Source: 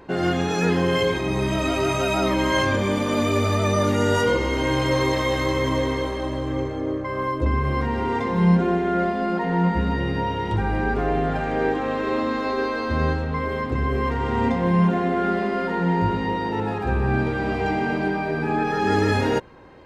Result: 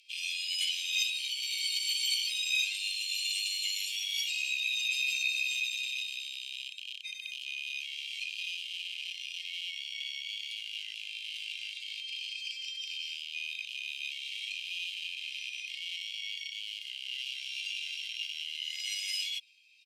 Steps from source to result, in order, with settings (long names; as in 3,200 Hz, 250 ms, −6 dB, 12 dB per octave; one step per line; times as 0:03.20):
loose part that buzzes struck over −30 dBFS, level −26 dBFS
Butterworth high-pass 2,000 Hz 96 dB per octave
formants moved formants +3 semitones
downsampling to 32,000 Hz